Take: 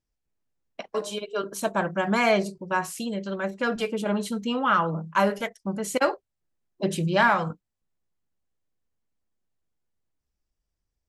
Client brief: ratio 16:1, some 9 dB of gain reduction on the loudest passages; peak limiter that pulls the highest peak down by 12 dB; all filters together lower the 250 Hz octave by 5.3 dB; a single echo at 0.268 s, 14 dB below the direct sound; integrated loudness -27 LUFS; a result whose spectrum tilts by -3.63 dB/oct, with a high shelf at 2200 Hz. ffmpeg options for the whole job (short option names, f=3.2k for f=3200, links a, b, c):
-af "equalizer=f=250:t=o:g=-7.5,highshelf=f=2.2k:g=5.5,acompressor=threshold=-24dB:ratio=16,alimiter=level_in=2.5dB:limit=-24dB:level=0:latency=1,volume=-2.5dB,aecho=1:1:268:0.2,volume=8.5dB"